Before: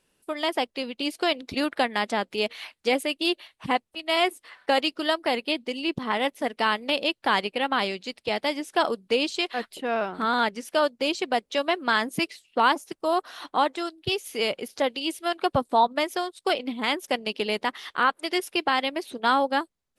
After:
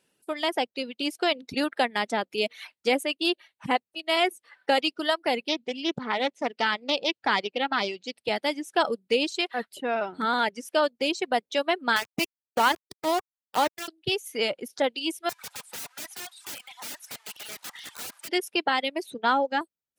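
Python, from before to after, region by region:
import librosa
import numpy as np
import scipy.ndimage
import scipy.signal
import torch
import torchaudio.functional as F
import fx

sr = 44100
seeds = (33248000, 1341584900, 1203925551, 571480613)

y = fx.chain(x, sr, fx.lowpass(hz=7300.0, slope=24),
    fx.doppler_dist(depth_ms=0.44), at=(5.48, 8.18))
y = fx.chain(y, sr, fx.peak_eq(hz=100.0, db=-7.0, octaves=1.0),
    fx.sample_gate(floor_db=-25.0), at=(11.96, 13.88))
y = fx.chain(y, sr, fx.delta_mod(bps=64000, step_db=-39.5),
    fx.steep_highpass(hz=780.0, slope=36),
    fx.overflow_wrap(gain_db=31.0), at=(15.29, 18.29))
y = fx.chain(y, sr, fx.block_float(bits=7),
    fx.ellip_bandpass(low_hz=120.0, high_hz=7200.0, order=3, stop_db=40),
    fx.high_shelf(hz=5100.0, db=-6.5), at=(19.14, 19.61))
y = fx.notch(y, sr, hz=1100.0, q=10.0)
y = fx.dereverb_blind(y, sr, rt60_s=1.1)
y = scipy.signal.sosfilt(scipy.signal.butter(2, 110.0, 'highpass', fs=sr, output='sos'), y)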